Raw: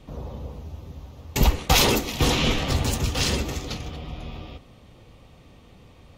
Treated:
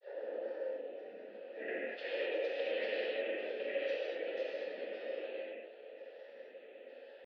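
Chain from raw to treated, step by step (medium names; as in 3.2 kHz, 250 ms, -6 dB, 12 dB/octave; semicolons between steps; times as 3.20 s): compression 6:1, threshold -33 dBFS, peak gain reduction 18.5 dB; tempo 0.85×; mistuned SSB +140 Hz 190–3500 Hz; granulator, pitch spread up and down by 7 st; vowel filter e; reverberation, pre-delay 3 ms, DRR -7 dB; trim +4.5 dB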